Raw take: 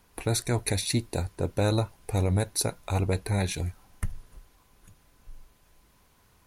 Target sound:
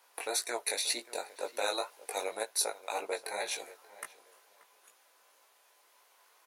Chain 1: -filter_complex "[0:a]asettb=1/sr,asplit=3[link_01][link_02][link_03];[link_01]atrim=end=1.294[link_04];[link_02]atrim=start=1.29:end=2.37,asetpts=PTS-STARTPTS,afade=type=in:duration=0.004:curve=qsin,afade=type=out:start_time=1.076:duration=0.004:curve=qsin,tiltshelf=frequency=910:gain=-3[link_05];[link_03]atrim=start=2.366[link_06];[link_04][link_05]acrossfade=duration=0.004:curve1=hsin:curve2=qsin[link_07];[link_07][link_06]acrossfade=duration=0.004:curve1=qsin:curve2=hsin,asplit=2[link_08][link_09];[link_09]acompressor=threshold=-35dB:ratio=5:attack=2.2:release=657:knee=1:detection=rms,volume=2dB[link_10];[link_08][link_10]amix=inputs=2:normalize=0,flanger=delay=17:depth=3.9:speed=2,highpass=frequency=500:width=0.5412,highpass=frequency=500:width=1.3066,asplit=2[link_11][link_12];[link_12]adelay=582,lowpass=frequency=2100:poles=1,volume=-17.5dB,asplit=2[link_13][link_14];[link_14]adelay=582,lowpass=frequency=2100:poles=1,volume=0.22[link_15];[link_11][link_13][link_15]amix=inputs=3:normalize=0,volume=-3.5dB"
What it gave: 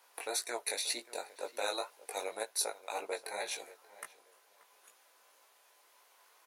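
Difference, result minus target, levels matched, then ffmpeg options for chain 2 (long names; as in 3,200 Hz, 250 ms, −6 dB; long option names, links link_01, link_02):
downward compressor: peak gain reduction +9 dB
-filter_complex "[0:a]asettb=1/sr,asplit=3[link_01][link_02][link_03];[link_01]atrim=end=1.294[link_04];[link_02]atrim=start=1.29:end=2.37,asetpts=PTS-STARTPTS,afade=type=in:duration=0.004:curve=qsin,afade=type=out:start_time=1.076:duration=0.004:curve=qsin,tiltshelf=frequency=910:gain=-3[link_05];[link_03]atrim=start=2.366[link_06];[link_04][link_05]acrossfade=duration=0.004:curve1=hsin:curve2=qsin[link_07];[link_07][link_06]acrossfade=duration=0.004:curve1=qsin:curve2=hsin,asplit=2[link_08][link_09];[link_09]acompressor=threshold=-23.5dB:ratio=5:attack=2.2:release=657:knee=1:detection=rms,volume=2dB[link_10];[link_08][link_10]amix=inputs=2:normalize=0,flanger=delay=17:depth=3.9:speed=2,highpass=frequency=500:width=0.5412,highpass=frequency=500:width=1.3066,asplit=2[link_11][link_12];[link_12]adelay=582,lowpass=frequency=2100:poles=1,volume=-17.5dB,asplit=2[link_13][link_14];[link_14]adelay=582,lowpass=frequency=2100:poles=1,volume=0.22[link_15];[link_11][link_13][link_15]amix=inputs=3:normalize=0,volume=-3.5dB"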